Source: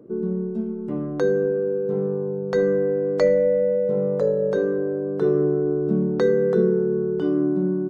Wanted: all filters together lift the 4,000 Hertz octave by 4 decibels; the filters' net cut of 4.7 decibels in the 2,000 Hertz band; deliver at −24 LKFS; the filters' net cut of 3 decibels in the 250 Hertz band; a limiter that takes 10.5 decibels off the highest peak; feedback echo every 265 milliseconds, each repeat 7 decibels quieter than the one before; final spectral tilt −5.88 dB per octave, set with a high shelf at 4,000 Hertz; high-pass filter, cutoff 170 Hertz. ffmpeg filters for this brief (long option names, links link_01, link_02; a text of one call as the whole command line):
ffmpeg -i in.wav -af "highpass=170,equalizer=frequency=250:width_type=o:gain=-3,equalizer=frequency=2000:width_type=o:gain=-8,highshelf=frequency=4000:gain=4.5,equalizer=frequency=4000:width_type=o:gain=3.5,alimiter=limit=-19.5dB:level=0:latency=1,aecho=1:1:265|530|795|1060|1325:0.447|0.201|0.0905|0.0407|0.0183,volume=1.5dB" out.wav